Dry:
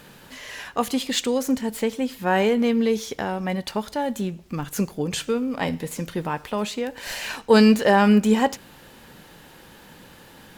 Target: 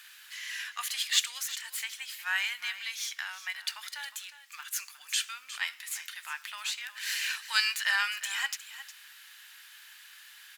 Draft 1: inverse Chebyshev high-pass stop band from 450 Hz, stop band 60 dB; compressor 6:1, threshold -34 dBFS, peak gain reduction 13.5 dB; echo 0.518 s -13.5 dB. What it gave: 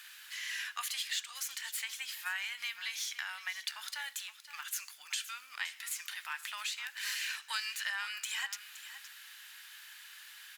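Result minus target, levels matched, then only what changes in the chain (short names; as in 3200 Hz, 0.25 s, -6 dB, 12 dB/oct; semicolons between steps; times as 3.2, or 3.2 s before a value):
compressor: peak gain reduction +13.5 dB; echo 0.159 s late
change: echo 0.359 s -13.5 dB; remove: compressor 6:1, threshold -34 dBFS, peak gain reduction 13.5 dB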